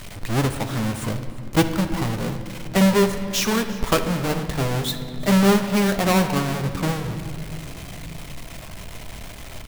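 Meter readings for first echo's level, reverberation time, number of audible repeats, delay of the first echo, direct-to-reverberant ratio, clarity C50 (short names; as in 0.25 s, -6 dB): -20.5 dB, 2.5 s, 1, 0.35 s, 7.0 dB, 8.5 dB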